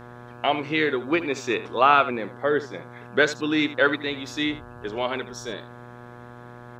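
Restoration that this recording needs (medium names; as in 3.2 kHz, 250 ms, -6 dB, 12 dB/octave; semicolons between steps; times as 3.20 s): de-hum 121.2 Hz, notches 14; inverse comb 77 ms -14.5 dB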